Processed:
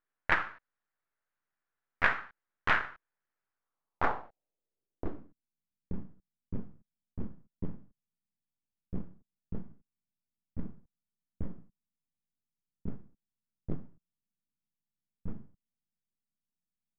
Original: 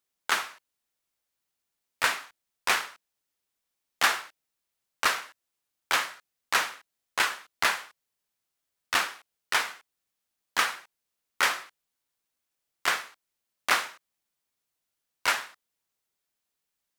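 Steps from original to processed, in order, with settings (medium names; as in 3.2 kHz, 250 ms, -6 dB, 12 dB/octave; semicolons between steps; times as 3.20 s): half-wave rectifier; low-pass sweep 1.6 kHz -> 200 Hz, 3.47–5.56 s; loudspeaker Doppler distortion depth 0.99 ms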